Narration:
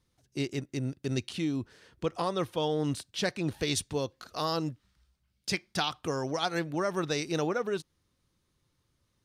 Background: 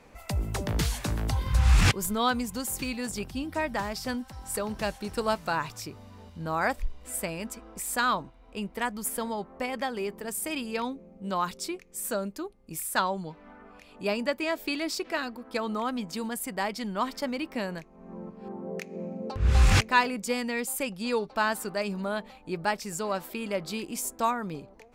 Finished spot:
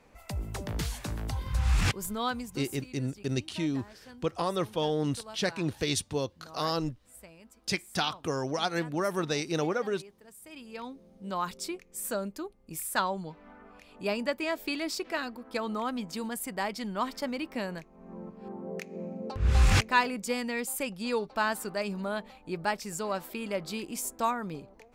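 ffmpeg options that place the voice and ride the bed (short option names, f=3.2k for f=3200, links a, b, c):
-filter_complex "[0:a]adelay=2200,volume=0.5dB[a];[1:a]volume=11dB,afade=t=out:st=2.28:d=0.59:silence=0.223872,afade=t=in:st=10.42:d=1.19:silence=0.149624[b];[a][b]amix=inputs=2:normalize=0"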